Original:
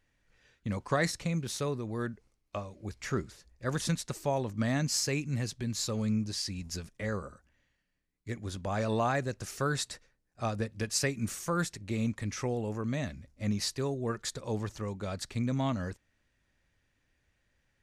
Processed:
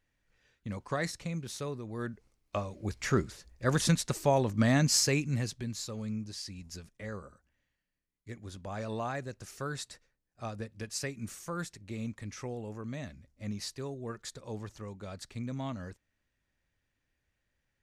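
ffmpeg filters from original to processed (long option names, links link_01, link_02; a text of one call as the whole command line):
ffmpeg -i in.wav -af "volume=4.5dB,afade=type=in:start_time=1.9:duration=0.82:silence=0.354813,afade=type=out:start_time=4.95:duration=0.9:silence=0.281838" out.wav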